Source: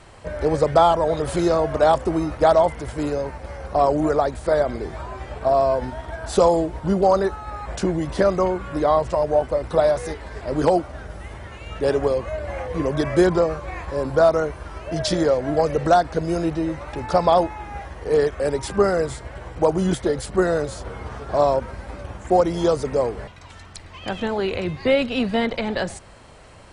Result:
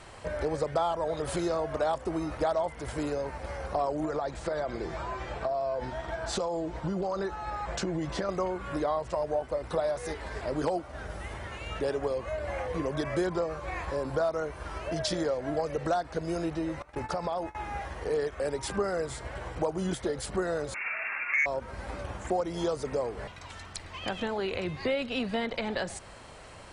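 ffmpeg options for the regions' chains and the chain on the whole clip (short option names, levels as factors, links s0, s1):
-filter_complex "[0:a]asettb=1/sr,asplit=3[s0][s1][s2];[s0]atrim=end=4.054[s3];[s1]atrim=start=4.05:end=8.29,asetpts=PTS-STARTPTS,afade=t=in:d=0.004:c=qsin,afade=t=out:st=4.236:d=0.004:c=qsin,lowpass=f=7900:w=0.5412,lowpass=f=7900:w=1.3066,aecho=1:1:5.9:0.35,atrim=end_sample=186984,acompressor=threshold=0.112:ratio=6:attack=3.2:release=140:knee=1:detection=peak[s4];[s2]atrim=start=8.286[s5];[s3][s4]acrossfade=d=0.004:c1=hsin:c2=qsin[s6];[s6][s5]acrossfade=d=0.004:c1=qsin:c2=hsin,asettb=1/sr,asplit=3[s7][s8][s9];[s7]atrim=end=16.824[s10];[s8]atrim=start=16.82:end=17.55,asetpts=PTS-STARTPTS,afade=t=in:d=0.004:c=qsin,afade=t=out:st=0.726:d=0.004:c=qsin,agate=range=0.1:threshold=0.0282:ratio=16:release=100:detection=peak,equalizer=f=3700:t=o:w=0.53:g=-3.5,acompressor=threshold=0.0708:ratio=3:attack=3.2:release=140:knee=1:detection=peak[s11];[s9]atrim=start=17.546[s12];[s10][s11]acrossfade=d=0.004:c1=hsin:c2=qsin[s13];[s13][s12]acrossfade=d=0.004:c1=qsin:c2=hsin,asettb=1/sr,asplit=3[s14][s15][s16];[s14]atrim=end=20.744[s17];[s15]atrim=start=20.74:end=21.46,asetpts=PTS-STARTPTS,afade=t=in:d=0.004:c=qsin,afade=t=out:st=0.716:d=0.004:c=qsin,highpass=f=390:p=1,lowpass=f=2400:t=q:w=0.5098,lowpass=f=2400:t=q:w=0.6013,lowpass=f=2400:t=q:w=0.9,lowpass=f=2400:t=q:w=2.563,afreqshift=-2800,acontrast=61[s18];[s16]atrim=start=21.456[s19];[s17][s18]acrossfade=d=0.004:c1=hsin:c2=qsin[s20];[s20][s19]acrossfade=d=0.004:c1=qsin:c2=hsin,lowshelf=f=400:g=-4.5,acompressor=threshold=0.0282:ratio=2.5"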